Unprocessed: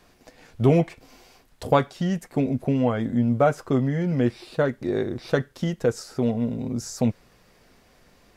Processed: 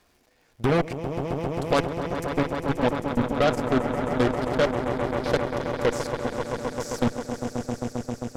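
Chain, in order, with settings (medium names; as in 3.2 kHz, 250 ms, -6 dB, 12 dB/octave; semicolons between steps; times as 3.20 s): peaking EQ 160 Hz -4.5 dB 1 oct; level held to a coarse grid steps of 22 dB; crackle 140 per s -55 dBFS; on a send: echo with a slow build-up 133 ms, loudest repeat 5, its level -10.5 dB; on the sum: Chebyshev shaper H 8 -15 dB, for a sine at -12 dBFS; trim +2 dB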